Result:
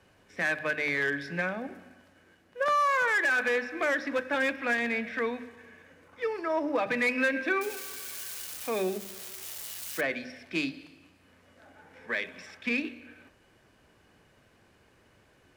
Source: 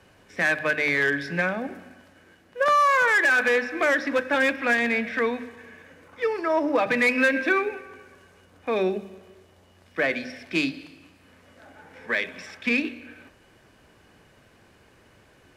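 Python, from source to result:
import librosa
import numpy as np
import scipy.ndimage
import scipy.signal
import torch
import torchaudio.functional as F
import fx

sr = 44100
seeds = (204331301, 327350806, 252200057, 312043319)

y = fx.crossing_spikes(x, sr, level_db=-22.0, at=(7.61, 10.01))
y = F.gain(torch.from_numpy(y), -6.0).numpy()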